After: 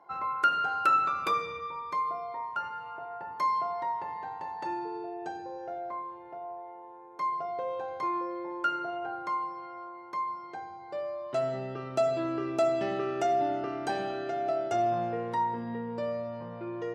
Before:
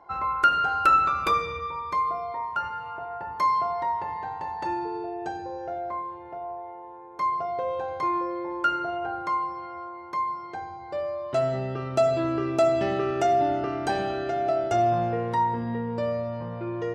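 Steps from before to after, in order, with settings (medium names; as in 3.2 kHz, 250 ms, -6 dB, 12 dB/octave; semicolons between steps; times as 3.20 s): high-pass 150 Hz 12 dB/octave; trim -5 dB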